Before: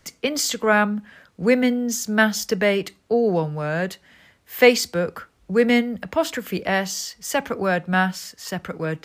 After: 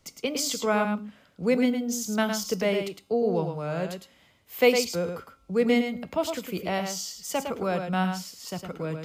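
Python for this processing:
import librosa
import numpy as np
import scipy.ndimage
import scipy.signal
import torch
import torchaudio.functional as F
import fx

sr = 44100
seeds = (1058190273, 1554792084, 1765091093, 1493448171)

p1 = fx.peak_eq(x, sr, hz=1700.0, db=-13.0, octaves=0.32)
p2 = fx.comb_fb(p1, sr, f0_hz=270.0, decay_s=0.73, harmonics='all', damping=0.0, mix_pct=50)
y = p2 + fx.echo_single(p2, sr, ms=108, db=-6.5, dry=0)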